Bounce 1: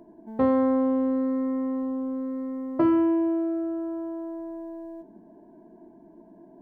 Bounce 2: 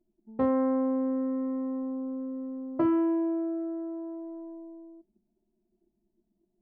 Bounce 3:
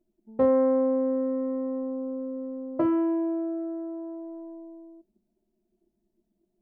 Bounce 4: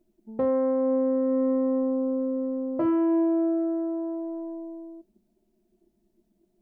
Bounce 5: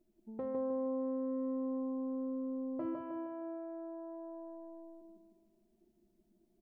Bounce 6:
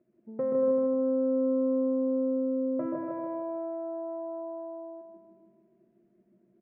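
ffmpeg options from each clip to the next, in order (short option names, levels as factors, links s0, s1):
-af "anlmdn=25.1,volume=0.631"
-af "equalizer=f=540:w=3.3:g=8"
-af "alimiter=limit=0.0631:level=0:latency=1:release=148,volume=2"
-filter_complex "[0:a]acompressor=threshold=0.01:ratio=2,asplit=2[s0][s1];[s1]aecho=0:1:156|312|468|624|780|936:0.631|0.278|0.122|0.0537|0.0236|0.0104[s2];[s0][s2]amix=inputs=2:normalize=0,volume=0.531"
-af "highpass=130,equalizer=f=140:t=q:w=4:g=7,equalizer=f=210:t=q:w=4:g=-3,equalizer=f=320:t=q:w=4:g=-5,equalizer=f=540:t=q:w=4:g=5,equalizer=f=830:t=q:w=4:g=-9,lowpass=f=2100:w=0.5412,lowpass=f=2100:w=1.3066,aecho=1:1:130|234|317.2|383.8|437:0.631|0.398|0.251|0.158|0.1,volume=2.24"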